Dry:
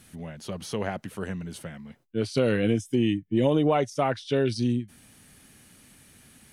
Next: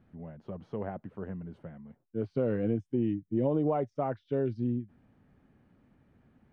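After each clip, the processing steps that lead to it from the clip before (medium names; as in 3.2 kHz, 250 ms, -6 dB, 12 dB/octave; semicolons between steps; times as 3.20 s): low-pass 1 kHz 12 dB/octave; trim -5.5 dB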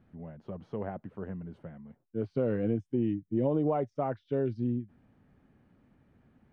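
no audible change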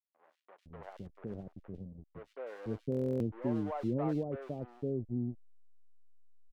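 hysteresis with a dead band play -35 dBFS; three bands offset in time mids, highs, lows 100/510 ms, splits 560/2800 Hz; buffer glitch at 2.90 s, samples 1024, times 12; trim -3.5 dB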